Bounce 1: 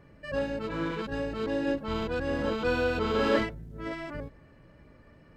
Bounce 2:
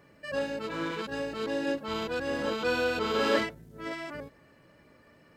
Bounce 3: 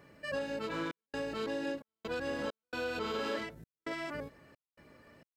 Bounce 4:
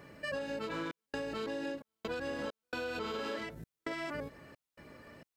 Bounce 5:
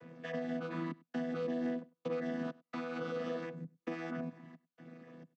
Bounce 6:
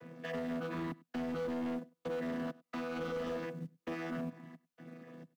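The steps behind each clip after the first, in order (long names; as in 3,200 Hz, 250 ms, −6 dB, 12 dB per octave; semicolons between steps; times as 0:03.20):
high-pass filter 260 Hz 6 dB per octave; high-shelf EQ 4,200 Hz +8.5 dB
downward compressor 6 to 1, threshold −33 dBFS, peak gain reduction 12 dB; gate pattern "xxxx.xxx.xx." 66 BPM −60 dB
downward compressor 4 to 1, threshold −41 dBFS, peak gain reduction 8.5 dB; level +5 dB
channel vocoder with a chord as carrier bare fifth, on E3; single-tap delay 99 ms −23.5 dB; level +2 dB
in parallel at −8 dB: floating-point word with a short mantissa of 2 bits; on the sum: hard clipping −33 dBFS, distortion −12 dB; level −1 dB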